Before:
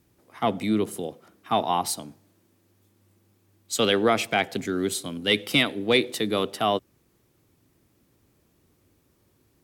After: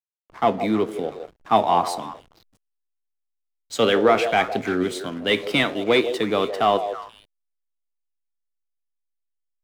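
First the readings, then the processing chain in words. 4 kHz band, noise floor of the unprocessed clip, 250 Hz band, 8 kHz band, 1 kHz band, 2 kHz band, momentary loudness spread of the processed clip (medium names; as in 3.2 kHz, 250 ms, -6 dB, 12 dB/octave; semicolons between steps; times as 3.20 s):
-1.0 dB, -66 dBFS, +2.0 dB, -6.5 dB, +6.0 dB, +2.5 dB, 13 LU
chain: overdrive pedal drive 9 dB, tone 1.3 kHz, clips at -8.5 dBFS; flange 0.65 Hz, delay 8.8 ms, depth 9 ms, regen +73%; on a send: repeats whose band climbs or falls 161 ms, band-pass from 540 Hz, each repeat 1.4 oct, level -6.5 dB; on the sum: hysteresis with a dead band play -47 dBFS; trim +9 dB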